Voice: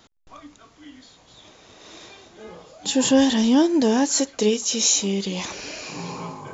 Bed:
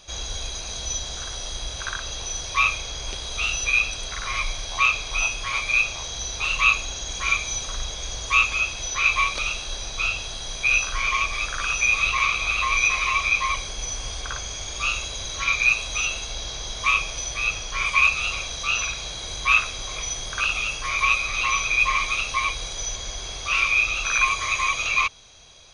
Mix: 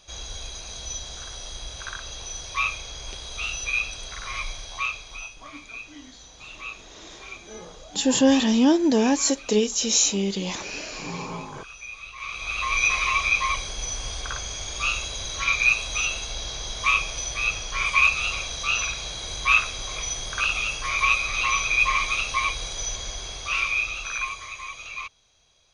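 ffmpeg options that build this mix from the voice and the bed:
-filter_complex "[0:a]adelay=5100,volume=-1dB[a];[1:a]volume=13dB,afade=t=out:st=4.48:d=0.91:silence=0.211349,afade=t=in:st=12.16:d=0.74:silence=0.125893,afade=t=out:st=23.01:d=1.53:silence=0.223872[b];[a][b]amix=inputs=2:normalize=0"

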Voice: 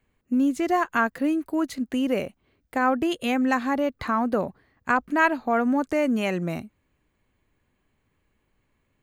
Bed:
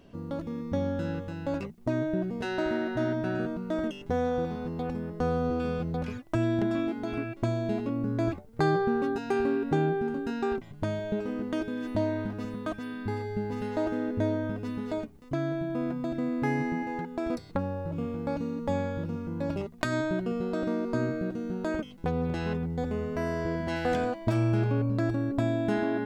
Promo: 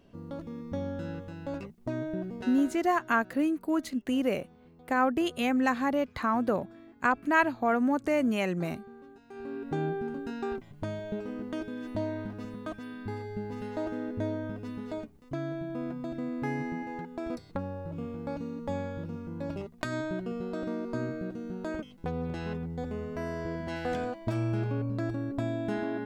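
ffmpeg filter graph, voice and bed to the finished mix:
-filter_complex "[0:a]adelay=2150,volume=-3.5dB[a];[1:a]volume=13dB,afade=t=out:st=2.35:d=0.44:silence=0.133352,afade=t=in:st=9.29:d=0.56:silence=0.125893[b];[a][b]amix=inputs=2:normalize=0"

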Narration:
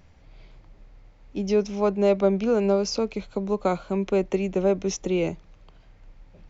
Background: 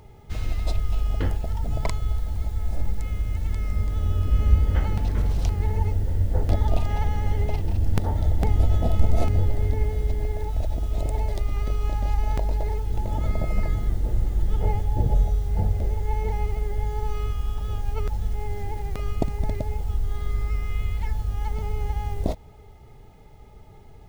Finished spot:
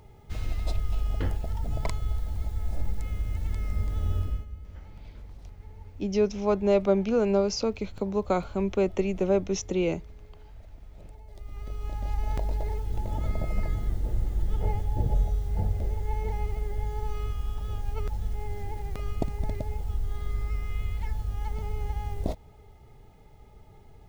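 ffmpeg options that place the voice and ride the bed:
-filter_complex "[0:a]adelay=4650,volume=-2dB[a];[1:a]volume=14.5dB,afade=t=out:st=4.17:d=0.29:silence=0.112202,afade=t=in:st=11.26:d=1.1:silence=0.11885[b];[a][b]amix=inputs=2:normalize=0"

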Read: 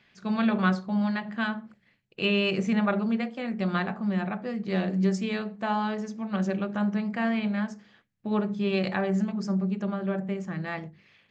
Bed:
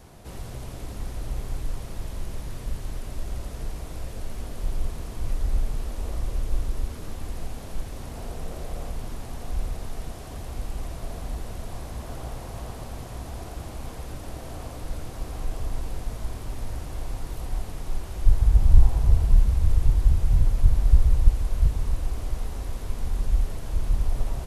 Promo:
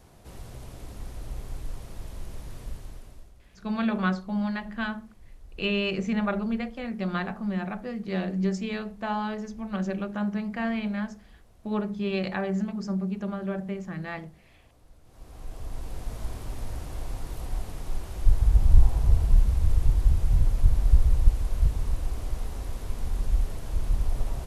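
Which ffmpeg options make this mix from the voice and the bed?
-filter_complex "[0:a]adelay=3400,volume=-2dB[a];[1:a]volume=15dB,afade=t=out:st=2.63:d=0.7:silence=0.141254,afade=t=in:st=15.03:d=1.19:silence=0.0944061[b];[a][b]amix=inputs=2:normalize=0"

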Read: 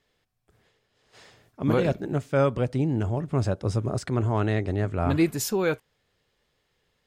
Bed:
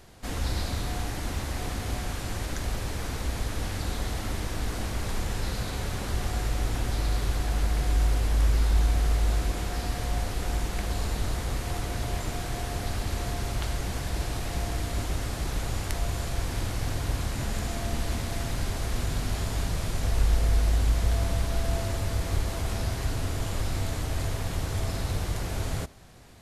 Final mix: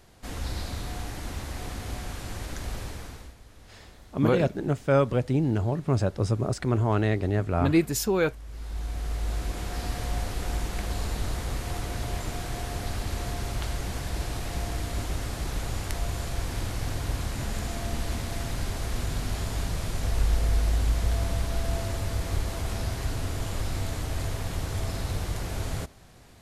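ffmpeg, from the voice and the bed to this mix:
-filter_complex "[0:a]adelay=2550,volume=0.5dB[a];[1:a]volume=16dB,afade=t=out:st=2.81:d=0.54:silence=0.141254,afade=t=in:st=8.45:d=1.42:silence=0.105925[b];[a][b]amix=inputs=2:normalize=0"

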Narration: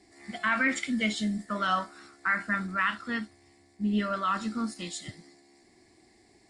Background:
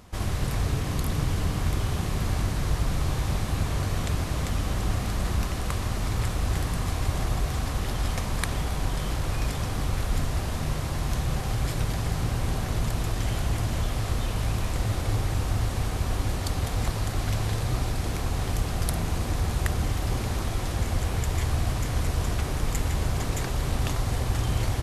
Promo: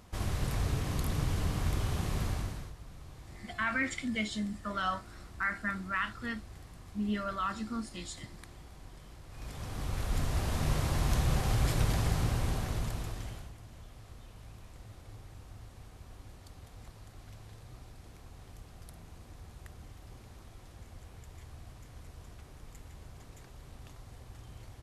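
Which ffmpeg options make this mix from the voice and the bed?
-filter_complex "[0:a]adelay=3150,volume=-5.5dB[a];[1:a]volume=16dB,afade=t=out:st=2.2:d=0.53:silence=0.133352,afade=t=in:st=9.29:d=1.47:silence=0.0841395,afade=t=out:st=11.96:d=1.57:silence=0.0794328[b];[a][b]amix=inputs=2:normalize=0"

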